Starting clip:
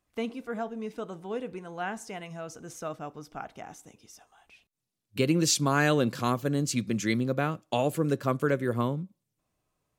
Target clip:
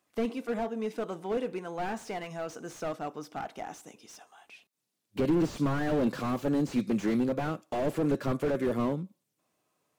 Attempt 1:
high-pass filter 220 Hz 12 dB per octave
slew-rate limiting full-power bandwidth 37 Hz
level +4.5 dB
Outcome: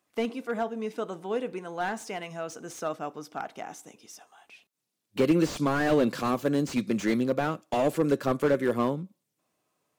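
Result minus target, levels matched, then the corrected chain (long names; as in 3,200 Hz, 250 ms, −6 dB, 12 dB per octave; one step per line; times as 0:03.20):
slew-rate limiting: distortion −6 dB
high-pass filter 220 Hz 12 dB per octave
slew-rate limiting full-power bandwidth 15 Hz
level +4.5 dB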